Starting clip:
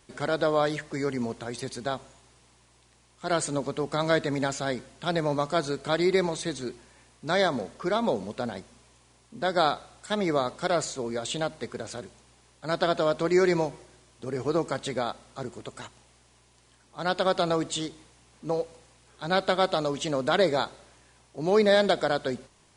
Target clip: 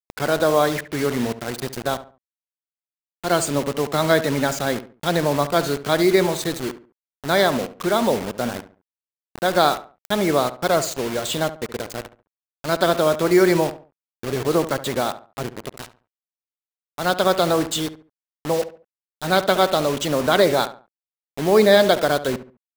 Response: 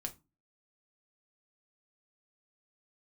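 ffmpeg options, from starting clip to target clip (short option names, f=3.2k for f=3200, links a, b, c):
-filter_complex "[0:a]afftfilt=real='re*gte(hypot(re,im),0.0141)':imag='im*gte(hypot(re,im),0.0141)':win_size=1024:overlap=0.75,acrusher=bits=5:mix=0:aa=0.000001,asplit=2[a][b];[b]adelay=70,lowpass=f=1.9k:p=1,volume=-13dB,asplit=2[c][d];[d]adelay=70,lowpass=f=1.9k:p=1,volume=0.33,asplit=2[e][f];[f]adelay=70,lowpass=f=1.9k:p=1,volume=0.33[g];[a][c][e][g]amix=inputs=4:normalize=0,volume=6.5dB"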